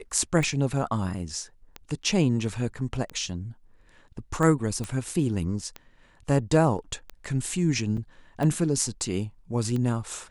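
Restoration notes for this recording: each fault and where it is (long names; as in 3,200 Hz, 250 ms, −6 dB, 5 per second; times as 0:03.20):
scratch tick 45 rpm
0:04.84: click −19 dBFS
0:07.97–0:07.98: drop-out 5.3 ms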